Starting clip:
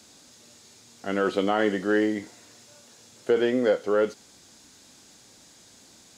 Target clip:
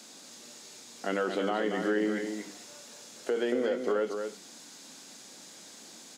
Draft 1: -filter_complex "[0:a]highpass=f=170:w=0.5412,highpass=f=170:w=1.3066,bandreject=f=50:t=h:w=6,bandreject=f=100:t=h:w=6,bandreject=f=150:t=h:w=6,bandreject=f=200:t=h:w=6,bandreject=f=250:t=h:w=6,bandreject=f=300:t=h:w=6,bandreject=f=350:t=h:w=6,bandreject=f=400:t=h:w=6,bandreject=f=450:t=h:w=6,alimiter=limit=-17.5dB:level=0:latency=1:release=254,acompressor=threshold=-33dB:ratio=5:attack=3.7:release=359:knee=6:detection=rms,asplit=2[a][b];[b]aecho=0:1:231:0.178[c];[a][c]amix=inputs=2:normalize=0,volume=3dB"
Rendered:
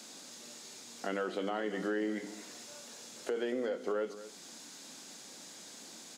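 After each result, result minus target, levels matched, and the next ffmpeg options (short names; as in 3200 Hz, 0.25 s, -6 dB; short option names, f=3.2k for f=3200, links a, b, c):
echo-to-direct -8.5 dB; compressor: peak gain reduction +5 dB
-filter_complex "[0:a]highpass=f=170:w=0.5412,highpass=f=170:w=1.3066,bandreject=f=50:t=h:w=6,bandreject=f=100:t=h:w=6,bandreject=f=150:t=h:w=6,bandreject=f=200:t=h:w=6,bandreject=f=250:t=h:w=6,bandreject=f=300:t=h:w=6,bandreject=f=350:t=h:w=6,bandreject=f=400:t=h:w=6,bandreject=f=450:t=h:w=6,alimiter=limit=-17.5dB:level=0:latency=1:release=254,acompressor=threshold=-33dB:ratio=5:attack=3.7:release=359:knee=6:detection=rms,asplit=2[a][b];[b]aecho=0:1:231:0.473[c];[a][c]amix=inputs=2:normalize=0,volume=3dB"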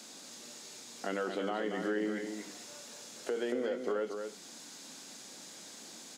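compressor: peak gain reduction +5 dB
-filter_complex "[0:a]highpass=f=170:w=0.5412,highpass=f=170:w=1.3066,bandreject=f=50:t=h:w=6,bandreject=f=100:t=h:w=6,bandreject=f=150:t=h:w=6,bandreject=f=200:t=h:w=6,bandreject=f=250:t=h:w=6,bandreject=f=300:t=h:w=6,bandreject=f=350:t=h:w=6,bandreject=f=400:t=h:w=6,bandreject=f=450:t=h:w=6,alimiter=limit=-17.5dB:level=0:latency=1:release=254,acompressor=threshold=-26.5dB:ratio=5:attack=3.7:release=359:knee=6:detection=rms,asplit=2[a][b];[b]aecho=0:1:231:0.473[c];[a][c]amix=inputs=2:normalize=0,volume=3dB"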